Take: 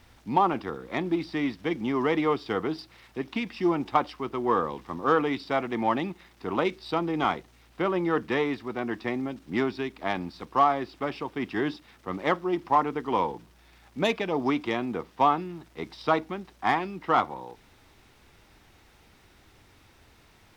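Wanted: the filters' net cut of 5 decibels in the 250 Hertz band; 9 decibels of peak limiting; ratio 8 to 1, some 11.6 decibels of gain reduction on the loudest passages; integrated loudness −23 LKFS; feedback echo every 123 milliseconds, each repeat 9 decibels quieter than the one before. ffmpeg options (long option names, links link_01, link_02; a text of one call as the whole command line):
ffmpeg -i in.wav -af "equalizer=frequency=250:width_type=o:gain=-7,acompressor=threshold=-29dB:ratio=8,alimiter=limit=-24dB:level=0:latency=1,aecho=1:1:123|246|369|492:0.355|0.124|0.0435|0.0152,volume=14dB" out.wav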